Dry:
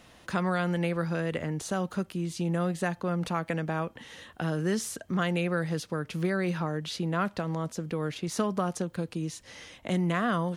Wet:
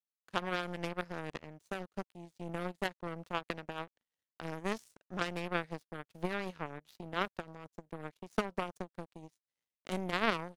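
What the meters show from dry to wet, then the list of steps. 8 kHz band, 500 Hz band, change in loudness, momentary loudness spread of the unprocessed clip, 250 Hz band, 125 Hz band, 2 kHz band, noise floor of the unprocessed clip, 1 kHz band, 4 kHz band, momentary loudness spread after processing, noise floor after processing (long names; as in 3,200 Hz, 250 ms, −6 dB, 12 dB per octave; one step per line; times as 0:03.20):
−16.5 dB, −8.5 dB, −9.0 dB, 6 LU, −12.0 dB, −15.0 dB, −4.5 dB, −56 dBFS, −5.5 dB, −4.0 dB, 13 LU, below −85 dBFS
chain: power curve on the samples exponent 3
wow of a warped record 33 1/3 rpm, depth 100 cents
level +4 dB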